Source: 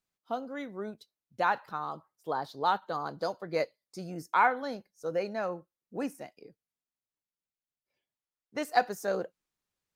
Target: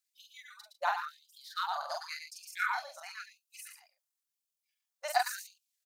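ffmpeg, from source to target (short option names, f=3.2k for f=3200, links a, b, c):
-af "bass=f=250:g=-5,treble=f=4k:g=9,aecho=1:1:67.06|189.5|253.6:0.794|0.501|0.282,atempo=1.7,afftfilt=real='re*gte(b*sr/1024,520*pow(2400/520,0.5+0.5*sin(2*PI*0.94*pts/sr)))':imag='im*gte(b*sr/1024,520*pow(2400/520,0.5+0.5*sin(2*PI*0.94*pts/sr)))':win_size=1024:overlap=0.75,volume=-3dB"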